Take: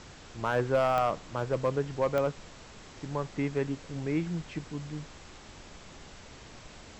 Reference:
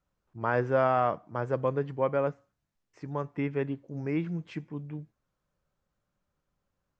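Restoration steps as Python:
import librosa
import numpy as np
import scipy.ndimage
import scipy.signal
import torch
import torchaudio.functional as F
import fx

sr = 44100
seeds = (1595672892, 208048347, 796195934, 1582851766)

y = fx.fix_declip(x, sr, threshold_db=-19.0)
y = fx.fix_declick_ar(y, sr, threshold=10.0)
y = fx.noise_reduce(y, sr, print_start_s=2.46, print_end_s=2.96, reduce_db=30.0)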